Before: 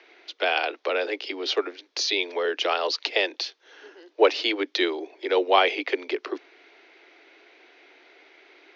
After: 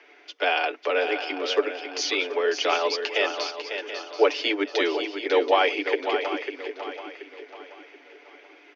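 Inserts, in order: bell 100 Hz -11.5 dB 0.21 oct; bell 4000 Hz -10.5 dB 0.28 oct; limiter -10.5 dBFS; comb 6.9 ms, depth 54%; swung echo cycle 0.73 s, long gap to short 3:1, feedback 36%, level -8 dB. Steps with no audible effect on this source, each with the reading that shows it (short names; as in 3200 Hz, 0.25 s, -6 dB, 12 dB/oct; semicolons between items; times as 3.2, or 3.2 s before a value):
bell 100 Hz: input band starts at 240 Hz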